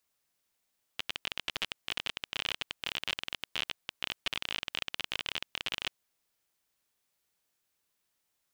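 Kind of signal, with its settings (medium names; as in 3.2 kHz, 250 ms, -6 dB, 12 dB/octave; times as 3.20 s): random clicks 31 per s -15.5 dBFS 4.91 s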